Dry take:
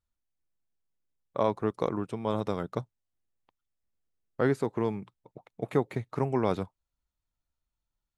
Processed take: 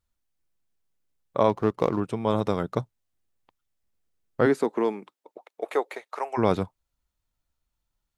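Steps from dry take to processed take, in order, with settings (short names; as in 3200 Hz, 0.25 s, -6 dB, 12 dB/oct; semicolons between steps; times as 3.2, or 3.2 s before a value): 1.49–2 median filter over 15 samples; 4.45–6.37 HPF 190 Hz -> 640 Hz 24 dB/oct; gain +5.5 dB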